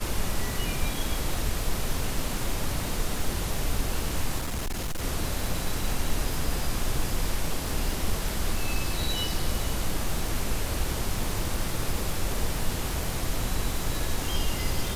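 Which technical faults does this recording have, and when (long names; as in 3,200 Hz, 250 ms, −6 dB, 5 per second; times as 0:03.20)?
surface crackle 180 per second −31 dBFS
0:04.38–0:05.04: clipping −26.5 dBFS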